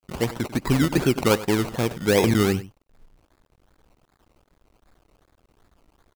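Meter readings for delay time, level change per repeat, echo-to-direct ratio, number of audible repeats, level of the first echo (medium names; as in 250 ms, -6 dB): 95 ms, no regular repeats, -16.5 dB, 1, -16.5 dB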